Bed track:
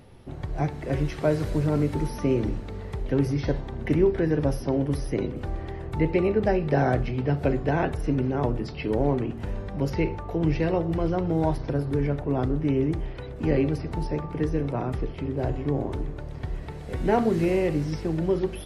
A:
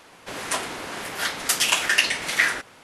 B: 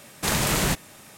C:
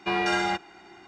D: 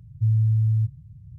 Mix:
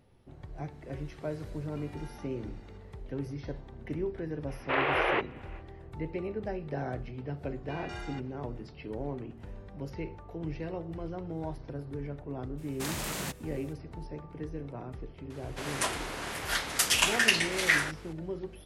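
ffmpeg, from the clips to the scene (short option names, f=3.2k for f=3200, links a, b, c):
-filter_complex "[3:a]asplit=2[a][b];[2:a]asplit=2[c][d];[0:a]volume=-13dB[e];[a]acompressor=threshold=-41dB:ratio=6:attack=3.2:release=140:knee=1:detection=peak[f];[c]highpass=f=220:t=q:w=0.5412,highpass=f=220:t=q:w=1.307,lowpass=f=2.6k:t=q:w=0.5176,lowpass=f=2.6k:t=q:w=0.7071,lowpass=f=2.6k:t=q:w=1.932,afreqshift=170[g];[d]highpass=120[h];[f]atrim=end=1.07,asetpts=PTS-STARTPTS,volume=-11.5dB,afade=t=in:d=0.004:c=hsin,afade=t=out:st=1.066:d=0.004:c=hsin,adelay=1710[i];[g]atrim=end=1.17,asetpts=PTS-STARTPTS,volume=-0.5dB,afade=t=in:d=0.05,afade=t=out:st=1.12:d=0.05,adelay=4460[j];[b]atrim=end=1.07,asetpts=PTS-STARTPTS,volume=-18dB,afade=t=in:d=0.004:c=hsin,afade=t=out:st=1.066:d=0.004:c=hsin,adelay=7630[k];[h]atrim=end=1.17,asetpts=PTS-STARTPTS,volume=-12dB,afade=t=in:d=0.02,afade=t=out:st=1.15:d=0.02,adelay=12570[l];[1:a]atrim=end=2.83,asetpts=PTS-STARTPTS,volume=-4.5dB,afade=t=in:d=0.004:c=hsin,afade=t=out:st=2.826:d=0.004:c=hsin,adelay=15300[m];[e][i][j][k][l][m]amix=inputs=6:normalize=0"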